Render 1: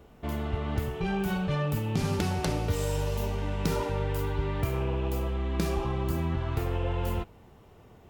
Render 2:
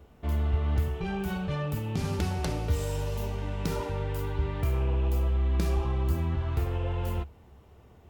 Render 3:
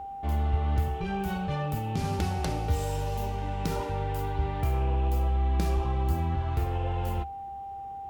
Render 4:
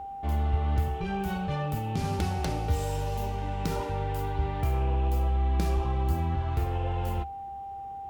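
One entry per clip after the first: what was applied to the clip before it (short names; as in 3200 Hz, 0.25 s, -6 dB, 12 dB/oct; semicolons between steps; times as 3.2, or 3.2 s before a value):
bell 71 Hz +12.5 dB 0.37 oct; gain -3 dB
whine 790 Hz -36 dBFS
tracing distortion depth 0.028 ms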